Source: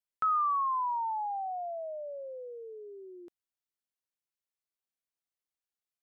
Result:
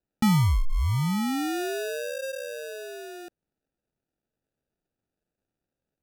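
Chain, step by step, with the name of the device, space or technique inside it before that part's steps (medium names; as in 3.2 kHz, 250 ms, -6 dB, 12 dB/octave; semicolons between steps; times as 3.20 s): crushed at another speed (playback speed 1.25×; sample-and-hold 33×; playback speed 0.8×); trim +7.5 dB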